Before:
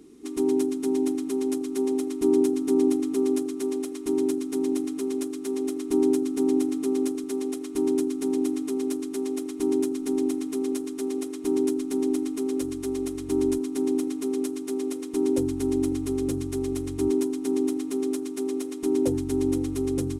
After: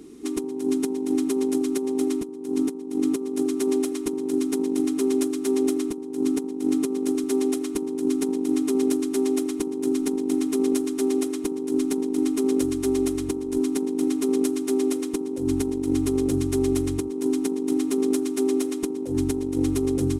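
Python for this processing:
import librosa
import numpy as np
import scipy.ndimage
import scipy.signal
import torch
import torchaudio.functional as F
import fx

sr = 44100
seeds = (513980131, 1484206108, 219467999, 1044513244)

y = fx.over_compress(x, sr, threshold_db=-27.0, ratio=-0.5)
y = F.gain(torch.from_numpy(y), 4.0).numpy()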